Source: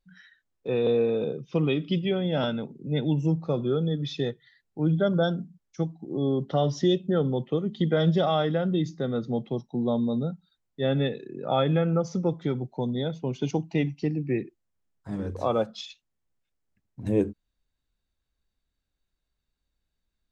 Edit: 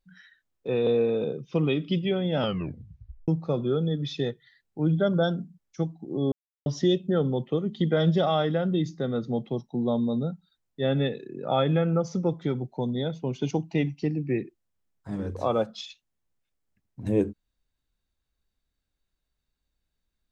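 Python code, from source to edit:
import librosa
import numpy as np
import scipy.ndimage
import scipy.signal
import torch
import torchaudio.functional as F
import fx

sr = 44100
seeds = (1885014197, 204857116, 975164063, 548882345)

y = fx.edit(x, sr, fx.tape_stop(start_s=2.39, length_s=0.89),
    fx.silence(start_s=6.32, length_s=0.34), tone=tone)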